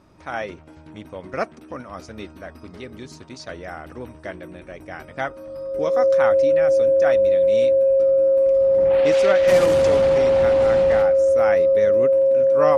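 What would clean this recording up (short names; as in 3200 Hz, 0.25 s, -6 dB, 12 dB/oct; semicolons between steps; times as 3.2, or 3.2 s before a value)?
notch 540 Hz, Q 30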